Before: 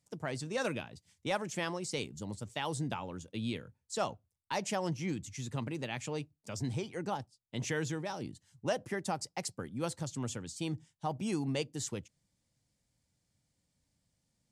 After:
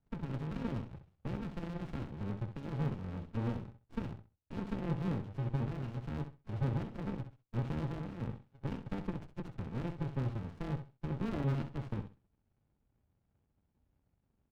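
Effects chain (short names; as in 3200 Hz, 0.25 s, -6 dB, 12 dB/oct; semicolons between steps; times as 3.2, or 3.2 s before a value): FFT order left unsorted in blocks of 64 samples; steep low-pass 3500 Hz; tilt shelf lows +6 dB, about 1200 Hz; comb 3.6 ms, depth 35%; small resonant body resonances 640/1100 Hz, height 9 dB; in parallel at -3 dB: compressor, threshold -40 dBFS, peak gain reduction 12 dB; on the sum: dynamic EQ 140 Hz, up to +6 dB, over -48 dBFS, Q 1.4; on a send: feedback echo 65 ms, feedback 21%, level -9.5 dB; on the sum: running maximum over 65 samples; gain -5 dB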